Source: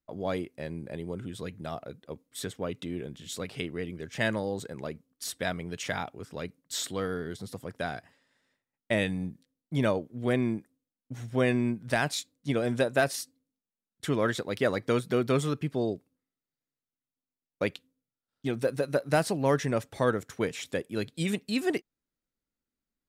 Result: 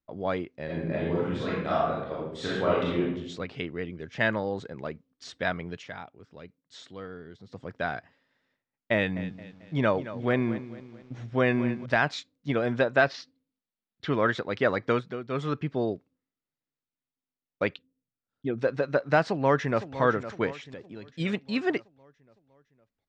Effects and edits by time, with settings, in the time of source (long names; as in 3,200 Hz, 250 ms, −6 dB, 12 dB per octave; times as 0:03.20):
0:00.65–0:03.00: thrown reverb, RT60 1 s, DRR −8 dB
0:05.73–0:07.60: duck −9 dB, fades 0.13 s
0:08.94–0:11.86: feedback echo at a low word length 221 ms, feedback 55%, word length 8 bits, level −13.5 dB
0:13.00–0:14.10: high shelf with overshoot 6,600 Hz −13.5 dB, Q 1.5
0:14.91–0:15.53: duck −11 dB, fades 0.26 s
0:17.74–0:18.58: spectral envelope exaggerated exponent 1.5
0:19.22–0:19.98: delay throw 510 ms, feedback 55%, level −12 dB
0:20.52–0:21.09: downward compressor 4 to 1, threshold −39 dBFS
whole clip: Bessel low-pass filter 3,800 Hz, order 8; dynamic equaliser 1,300 Hz, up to +6 dB, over −43 dBFS, Q 0.74